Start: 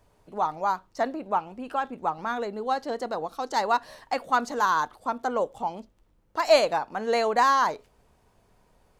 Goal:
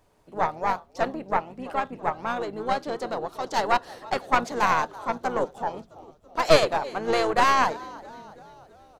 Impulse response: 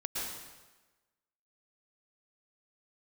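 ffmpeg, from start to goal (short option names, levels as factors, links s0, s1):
-filter_complex "[0:a]lowshelf=f=150:g=-5,asplit=2[s0][s1];[s1]asplit=5[s2][s3][s4][s5][s6];[s2]adelay=331,afreqshift=-75,volume=0.106[s7];[s3]adelay=662,afreqshift=-150,volume=0.0617[s8];[s4]adelay=993,afreqshift=-225,volume=0.0355[s9];[s5]adelay=1324,afreqshift=-300,volume=0.0207[s10];[s6]adelay=1655,afreqshift=-375,volume=0.012[s11];[s7][s8][s9][s10][s11]amix=inputs=5:normalize=0[s12];[s0][s12]amix=inputs=2:normalize=0,asplit=3[s13][s14][s15];[s14]asetrate=22050,aresample=44100,atempo=2,volume=0.158[s16];[s15]asetrate=33038,aresample=44100,atempo=1.33484,volume=0.398[s17];[s13][s16][s17]amix=inputs=3:normalize=0,aeval=exprs='0.562*(cos(1*acos(clip(val(0)/0.562,-1,1)))-cos(1*PI/2))+0.126*(cos(4*acos(clip(val(0)/0.562,-1,1)))-cos(4*PI/2))':c=same"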